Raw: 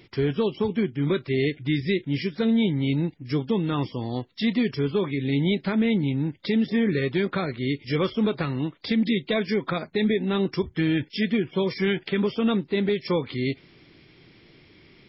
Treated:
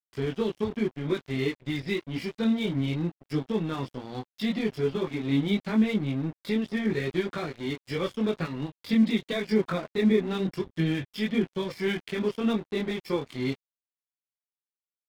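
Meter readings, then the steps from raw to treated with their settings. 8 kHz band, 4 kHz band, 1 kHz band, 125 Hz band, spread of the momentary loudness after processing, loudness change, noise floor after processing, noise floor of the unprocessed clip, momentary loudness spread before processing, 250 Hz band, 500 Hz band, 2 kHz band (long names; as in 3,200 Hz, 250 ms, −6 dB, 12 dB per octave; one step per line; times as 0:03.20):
can't be measured, −4.5 dB, −4.0 dB, −5.0 dB, 8 LU, −3.5 dB, below −85 dBFS, −55 dBFS, 5 LU, −3.0 dB, −3.5 dB, −4.0 dB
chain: multi-voice chorus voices 6, 0.84 Hz, delay 21 ms, depth 2.6 ms
dead-zone distortion −41 dBFS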